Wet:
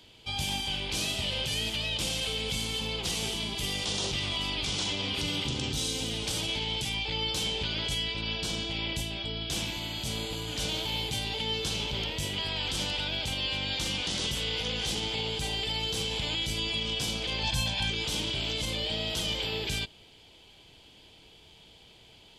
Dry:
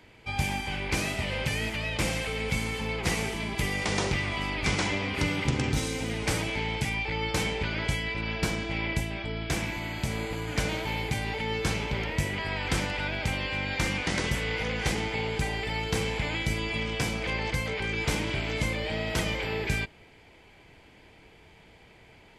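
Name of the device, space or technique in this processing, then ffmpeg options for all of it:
over-bright horn tweeter: -filter_complex "[0:a]asettb=1/sr,asplit=3[link_01][link_02][link_03];[link_01]atrim=end=7.984[link_04];[link_02]atrim=start=7.98:end=8.54,asetpts=PTS-STARTPTS,afade=type=in:duration=0.004:curve=qsin,afade=type=out:start_time=0.556:duration=0.004:curve=qsin,lowpass=11000[link_05];[link_03]atrim=start=8.536[link_06];[link_04][link_05]acrossfade=duration=0.004:curve1=hsin:curve2=qsin[link_07];[link_07][link_06]acrossfade=duration=0.004:curve1=qsin:curve2=hsin,highshelf=frequency=2600:width_type=q:width=3:gain=7.5,alimiter=limit=-18dB:level=0:latency=1:release=34,asettb=1/sr,asplit=3[link_08][link_09][link_10];[link_08]atrim=end=17.434[link_11];[link_09]atrim=start=17.43:end=17.9,asetpts=PTS-STARTPTS,afade=type=in:duration=0.004:curve=qsin,afade=type=out:start_time=0.466:duration=0.004:curve=qsin,aecho=1:1:1.2:0.99,atrim=end_sample=20727[link_12];[link_10]atrim=start=17.896[link_13];[link_11][link_12]acrossfade=duration=0.004:curve1=hsin:curve2=qsin[link_14];[link_14][link_13]acrossfade=duration=0.004:curve1=qsin:curve2=hsin,volume=-3.5dB"

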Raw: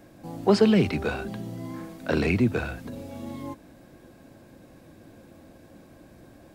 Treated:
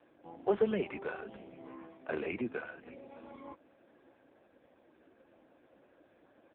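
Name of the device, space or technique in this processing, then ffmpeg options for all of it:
satellite phone: -af "highpass=370,lowpass=3100,aecho=1:1:608:0.0891,volume=-6dB" -ar 8000 -c:a libopencore_amrnb -b:a 5150

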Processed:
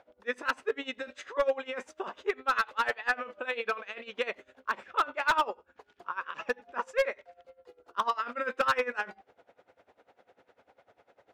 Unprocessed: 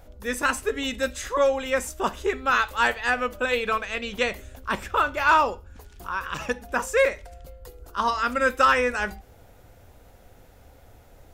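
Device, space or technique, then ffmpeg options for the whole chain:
helicopter radio: -af "highpass=370,lowpass=2900,aeval=exprs='val(0)*pow(10,-20*(0.5-0.5*cos(2*PI*10*n/s))/20)':channel_layout=same,asoftclip=type=hard:threshold=-19.5dB"

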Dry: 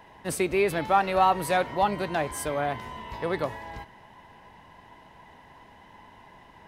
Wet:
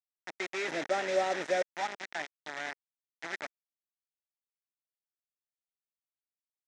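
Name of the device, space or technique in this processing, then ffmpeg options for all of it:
hand-held game console: -filter_complex "[0:a]asettb=1/sr,asplit=3[link_01][link_02][link_03];[link_01]atrim=end=0.684[link_04];[link_02]atrim=start=0.68:end=1.62,asetpts=PTS-STARTPTS,afade=type=in:duration=0.004:curve=qsin,afade=type=out:start_time=0.936:duration=0.004:curve=qsin,lowshelf=frequency=690:width_type=q:width=3:gain=8[link_05];[link_03]atrim=start=1.616[link_06];[link_04][link_05]acrossfade=duration=0.004:curve1=hsin:curve2=qsin[link_07];[link_07][link_06]acrossfade=duration=0.004:curve1=qsin:curve2=hsin,acrusher=bits=3:mix=0:aa=0.000001,highpass=410,equalizer=frequency=490:width_type=q:width=4:gain=-10,equalizer=frequency=1100:width_type=q:width=4:gain=-8,equalizer=frequency=1900:width_type=q:width=4:gain=7,equalizer=frequency=2900:width_type=q:width=4:gain=-5,equalizer=frequency=4500:width_type=q:width=4:gain=-8,lowpass=frequency=5900:width=0.5412,lowpass=frequency=5900:width=1.3066,volume=-9dB"

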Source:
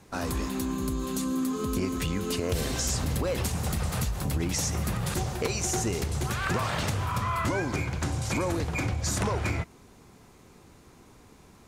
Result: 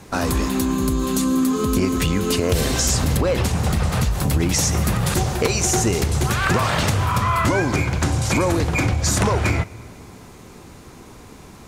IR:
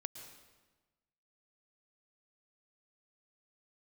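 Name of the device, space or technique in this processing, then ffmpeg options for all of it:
ducked reverb: -filter_complex "[0:a]asplit=3[link_01][link_02][link_03];[1:a]atrim=start_sample=2205[link_04];[link_02][link_04]afir=irnorm=-1:irlink=0[link_05];[link_03]apad=whole_len=514883[link_06];[link_05][link_06]sidechaincompress=threshold=-34dB:ratio=8:attack=16:release=541,volume=-2dB[link_07];[link_01][link_07]amix=inputs=2:normalize=0,asettb=1/sr,asplit=3[link_08][link_09][link_10];[link_08]atrim=end=3.174[link_11];[link_09]atrim=start=3.17:end=4.11,asetpts=PTS-STARTPTS,afade=type=in:duration=0.004:curve=qsin,afade=type=out:start_time=0.936:duration=0.004:curve=qsin,highshelf=frequency=7200:gain=-9.5[link_12];[link_10]atrim=start=4.106[link_13];[link_11][link_12]acrossfade=duration=0.004:curve1=hsin:curve2=qsin[link_14];[link_14][link_13]acrossfade=duration=0.004:curve1=qsin:curve2=hsin,volume=8dB"

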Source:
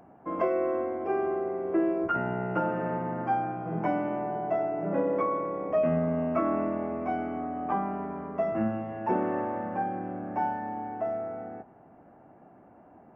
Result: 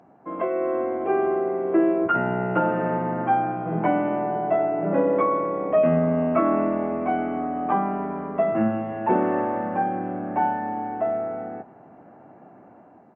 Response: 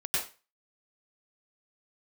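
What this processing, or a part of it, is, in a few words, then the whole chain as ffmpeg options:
Bluetooth headset: -af "highpass=110,dynaudnorm=framelen=470:gausssize=3:maxgain=6.5dB,aresample=8000,aresample=44100" -ar 16000 -c:a sbc -b:a 64k

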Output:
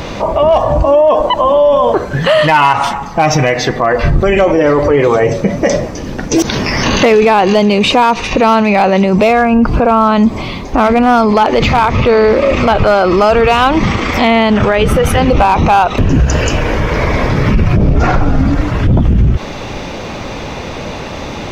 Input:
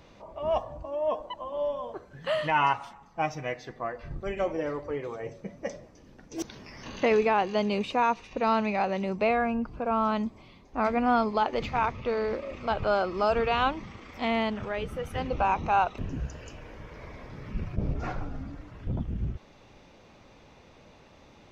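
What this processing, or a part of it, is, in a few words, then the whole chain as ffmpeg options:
loud club master: -af "acompressor=threshold=-30dB:ratio=2,asoftclip=type=hard:threshold=-23.5dB,alimiter=level_in=33dB:limit=-1dB:release=50:level=0:latency=1,volume=-1.5dB"

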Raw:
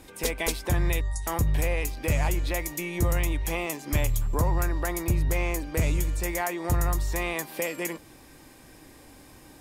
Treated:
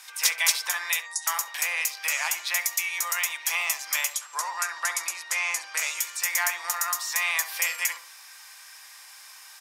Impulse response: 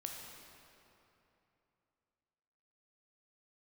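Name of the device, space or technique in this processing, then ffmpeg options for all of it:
headphones lying on a table: -filter_complex "[0:a]asettb=1/sr,asplit=3[link_01][link_02][link_03];[link_01]atrim=end=4.144[link_04];[link_02]atrim=start=4.14:end=5.79,asetpts=PTS-STARTPTS,afade=type=in:duration=0.004:curve=qsin,afade=type=out:start_time=1.646:duration=0.004:curve=qsin,lowpass=frequency=11000:width=0.5412,lowpass=frequency=11000:width=1.3066[link_05];[link_03]atrim=start=5.786[link_06];[link_04][link_05]acrossfade=duration=0.004:curve1=hsin:curve2=qsin[link_07];[link_07][link_06]acrossfade=duration=0.004:curve1=qsin:curve2=hsin,highpass=frequency=1100:width=0.5412,highpass=frequency=1100:width=1.3066,equalizer=frequency=5600:width_type=o:width=0.52:gain=6.5,asplit=2[link_08][link_09];[link_09]adelay=67,lowpass=frequency=860:poles=1,volume=-6dB,asplit=2[link_10][link_11];[link_11]adelay=67,lowpass=frequency=860:poles=1,volume=0.48,asplit=2[link_12][link_13];[link_13]adelay=67,lowpass=frequency=860:poles=1,volume=0.48,asplit=2[link_14][link_15];[link_15]adelay=67,lowpass=frequency=860:poles=1,volume=0.48,asplit=2[link_16][link_17];[link_17]adelay=67,lowpass=frequency=860:poles=1,volume=0.48,asplit=2[link_18][link_19];[link_19]adelay=67,lowpass=frequency=860:poles=1,volume=0.48[link_20];[link_08][link_10][link_12][link_14][link_16][link_18][link_20]amix=inputs=7:normalize=0,volume=7dB"

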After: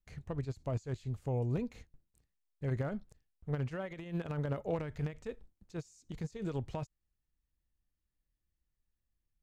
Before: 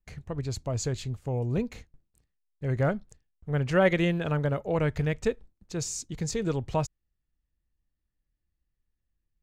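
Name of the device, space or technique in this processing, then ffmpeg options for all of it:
de-esser from a sidechain: -filter_complex "[0:a]asplit=2[link_01][link_02];[link_02]highpass=4200,apad=whole_len=415697[link_03];[link_01][link_03]sidechaincompress=threshold=-56dB:ratio=10:attack=1.9:release=42,volume=-4dB"

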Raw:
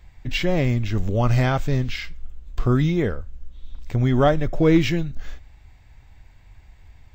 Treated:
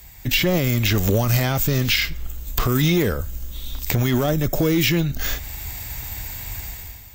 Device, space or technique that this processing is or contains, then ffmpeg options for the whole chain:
FM broadcast chain: -filter_complex "[0:a]highpass=frequency=58:poles=1,dynaudnorm=framelen=130:gausssize=7:maxgain=13dB,acrossover=split=400|4400[link_01][link_02][link_03];[link_01]acompressor=threshold=-22dB:ratio=4[link_04];[link_02]acompressor=threshold=-28dB:ratio=4[link_05];[link_03]acompressor=threshold=-53dB:ratio=4[link_06];[link_04][link_05][link_06]amix=inputs=3:normalize=0,aemphasis=mode=production:type=50fm,alimiter=limit=-15.5dB:level=0:latency=1:release=20,asoftclip=type=hard:threshold=-17.5dB,lowpass=frequency=15000:width=0.5412,lowpass=frequency=15000:width=1.3066,aemphasis=mode=production:type=50fm,volume=5.5dB"

